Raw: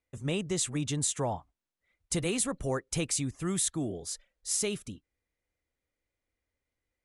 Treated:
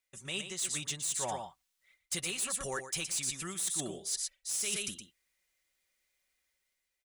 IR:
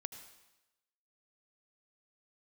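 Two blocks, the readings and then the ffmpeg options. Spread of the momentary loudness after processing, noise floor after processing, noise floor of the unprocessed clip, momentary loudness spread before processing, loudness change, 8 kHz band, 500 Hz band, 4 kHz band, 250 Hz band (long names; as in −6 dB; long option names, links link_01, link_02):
6 LU, −84 dBFS, below −85 dBFS, 10 LU, −2.5 dB, −1.0 dB, −8.5 dB, +0.5 dB, −12.5 dB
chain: -af "lowshelf=frequency=400:gain=-4.5,dynaudnorm=framelen=130:gausssize=9:maxgain=6dB,tiltshelf=frequency=1300:gain=-8.5,aecho=1:1:118:0.355,asoftclip=type=tanh:threshold=-16.5dB,aecho=1:1:5.3:0.42,areverse,acompressor=threshold=-30dB:ratio=10,areverse,volume=-2dB"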